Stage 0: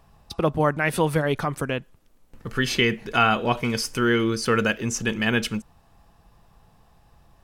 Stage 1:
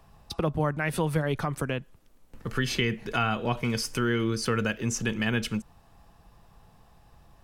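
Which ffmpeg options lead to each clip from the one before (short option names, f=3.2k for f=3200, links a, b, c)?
-filter_complex "[0:a]acrossover=split=170[a][b];[b]acompressor=threshold=-30dB:ratio=2[c];[a][c]amix=inputs=2:normalize=0"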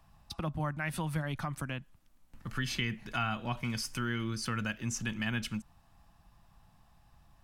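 -af "equalizer=f=440:w=2.5:g=-14.5,volume=-5.5dB"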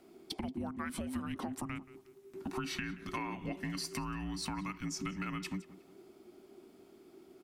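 -filter_complex "[0:a]acompressor=threshold=-39dB:ratio=6,afreqshift=-400,asplit=2[a][b];[b]adelay=179,lowpass=f=3.3k:p=1,volume=-17.5dB,asplit=2[c][d];[d]adelay=179,lowpass=f=3.3k:p=1,volume=0.34,asplit=2[e][f];[f]adelay=179,lowpass=f=3.3k:p=1,volume=0.34[g];[a][c][e][g]amix=inputs=4:normalize=0,volume=3.5dB"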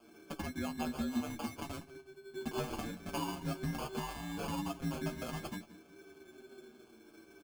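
-filter_complex "[0:a]acrusher=samples=23:mix=1:aa=0.000001,asplit=2[a][b];[b]adelay=13,volume=-6dB[c];[a][c]amix=inputs=2:normalize=0,asplit=2[d][e];[e]adelay=6.4,afreqshift=-0.71[f];[d][f]amix=inputs=2:normalize=1,volume=2.5dB"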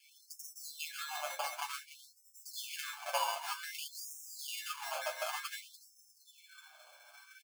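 -filter_complex "[0:a]asplit=2[a][b];[b]asoftclip=type=hard:threshold=-31.5dB,volume=-4.5dB[c];[a][c]amix=inputs=2:normalize=0,aecho=1:1:291:0.266,afftfilt=real='re*gte(b*sr/1024,480*pow(5300/480,0.5+0.5*sin(2*PI*0.54*pts/sr)))':imag='im*gte(b*sr/1024,480*pow(5300/480,0.5+0.5*sin(2*PI*0.54*pts/sr)))':win_size=1024:overlap=0.75,volume=3dB"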